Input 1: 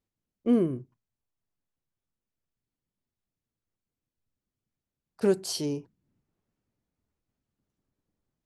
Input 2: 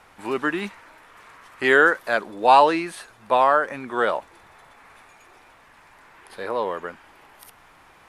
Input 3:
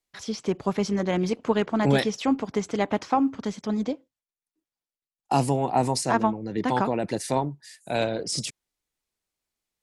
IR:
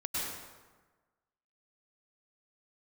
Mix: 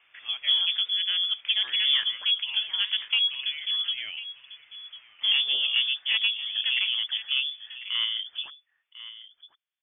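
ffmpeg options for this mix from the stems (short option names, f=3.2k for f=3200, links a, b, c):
-filter_complex "[0:a]volume=-1.5dB[a];[1:a]acompressor=threshold=-20dB:ratio=6,volume=-10dB,asplit=2[b][c];[c]volume=-22.5dB[d];[2:a]lowpass=f=2k:w=0.5412,lowpass=f=2k:w=1.3066,volume=-1.5dB,asplit=3[e][f][g];[f]volume=-15.5dB[h];[g]apad=whole_len=356373[i];[b][i]sidechaincompress=threshold=-25dB:ratio=8:attack=16:release=957[j];[d][h]amix=inputs=2:normalize=0,aecho=0:1:1047:1[k];[a][j][e][k]amix=inputs=4:normalize=0,highpass=58,asoftclip=type=tanh:threshold=-13dB,lowpass=f=3.1k:t=q:w=0.5098,lowpass=f=3.1k:t=q:w=0.6013,lowpass=f=3.1k:t=q:w=0.9,lowpass=f=3.1k:t=q:w=2.563,afreqshift=-3600"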